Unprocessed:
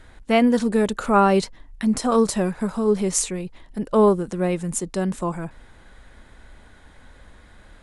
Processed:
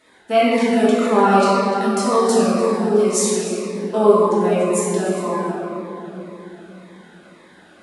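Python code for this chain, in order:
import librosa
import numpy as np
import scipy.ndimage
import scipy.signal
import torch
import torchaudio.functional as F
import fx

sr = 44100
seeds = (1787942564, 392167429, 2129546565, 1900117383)

p1 = scipy.signal.sosfilt(scipy.signal.butter(2, 340.0, 'highpass', fs=sr, output='sos'), x)
p2 = p1 + fx.echo_single(p1, sr, ms=298, db=-15.5, dry=0)
p3 = fx.room_shoebox(p2, sr, seeds[0], volume_m3=200.0, walls='hard', distance_m=1.5)
p4 = fx.notch_cascade(p3, sr, direction='falling', hz=1.9)
y = F.gain(torch.from_numpy(p4), -2.5).numpy()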